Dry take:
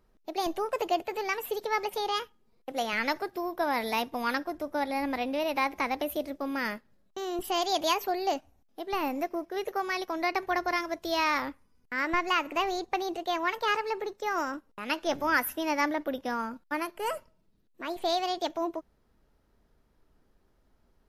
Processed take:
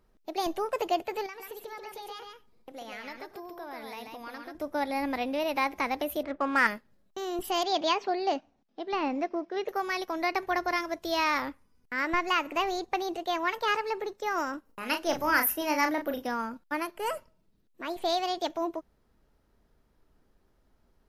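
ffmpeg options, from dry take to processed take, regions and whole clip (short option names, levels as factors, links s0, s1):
-filter_complex "[0:a]asettb=1/sr,asplit=3[s0][s1][s2];[s0]atrim=end=1.264[s3];[s1]atrim=start=1.26:end=4.55,asetpts=PTS-STARTPTS,afade=t=in:d=0.004:c=qsin,afade=t=out:st=3.286:d=0.004:c=qsin,acompressor=threshold=0.00562:ratio=2.5:attack=3.2:release=140:knee=1:detection=peak,aecho=1:1:96|137:0.141|0.631,atrim=end_sample=145089[s4];[s2]atrim=start=4.546[s5];[s3][s4]acrossfade=d=0.004:c1=hsin:c2=qsin[s6];[s6][s5]acrossfade=d=0.004:c1=qsin:c2=hsin,asettb=1/sr,asplit=3[s7][s8][s9];[s7]atrim=end=6.234[s10];[s8]atrim=start=6.23:end=6.67,asetpts=PTS-STARTPTS,afade=t=in:d=0.004:c=qsin,afade=t=out:st=0.436:d=0.004:c=qsin,lowpass=4600,equalizer=f=1400:w=0.77:g=12,adynamicsmooth=sensitivity=7:basefreq=2800[s11];[s9]atrim=start=6.666[s12];[s10][s11]acrossfade=d=0.004:c1=hsin:c2=qsin[s13];[s13][s12]acrossfade=d=0.004:c1=qsin:c2=hsin,asettb=1/sr,asplit=3[s14][s15][s16];[s14]atrim=end=7.634[s17];[s15]atrim=start=7.63:end=9.69,asetpts=PTS-STARTPTS,afade=t=in:d=0.004:c=qsin,afade=t=out:st=2.056:d=0.004:c=qsin,lowpass=f=5400:w=0.5412,lowpass=f=5400:w=1.3066,lowshelf=f=130:t=q:w=1.5:g=-11[s18];[s16]atrim=start=9.686[s19];[s17][s18]acrossfade=d=0.004:c1=hsin:c2=qsin[s20];[s20][s19]acrossfade=d=0.004:c1=qsin:c2=hsin,asettb=1/sr,asplit=3[s21][s22][s23];[s21]atrim=end=14.654[s24];[s22]atrim=start=14.65:end=16.27,asetpts=PTS-STARTPTS,afade=t=in:d=0.004:c=qsin,afade=t=out:st=1.616:d=0.004:c=qsin,highshelf=f=9100:g=9.5,bandreject=f=3500:w=11,asplit=2[s25][s26];[s26]adelay=36,volume=0.473[s27];[s25][s27]amix=inputs=2:normalize=0,atrim=end_sample=71442[s28];[s23]atrim=start=16.266[s29];[s24][s28]acrossfade=d=0.004:c1=hsin:c2=qsin[s30];[s30][s29]acrossfade=d=0.004:c1=qsin:c2=hsin"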